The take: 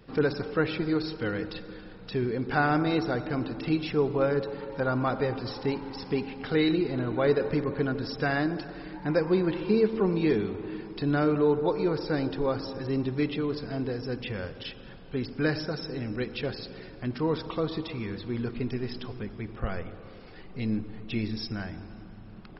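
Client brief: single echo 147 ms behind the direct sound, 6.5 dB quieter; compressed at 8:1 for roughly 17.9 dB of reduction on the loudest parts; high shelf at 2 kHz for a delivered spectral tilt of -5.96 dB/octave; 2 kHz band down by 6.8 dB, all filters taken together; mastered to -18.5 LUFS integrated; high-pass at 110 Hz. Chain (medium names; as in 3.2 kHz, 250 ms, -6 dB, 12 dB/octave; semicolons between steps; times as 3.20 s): high-pass 110 Hz; treble shelf 2 kHz -3.5 dB; peaking EQ 2 kHz -8 dB; compression 8:1, threshold -39 dBFS; delay 147 ms -6.5 dB; trim +24 dB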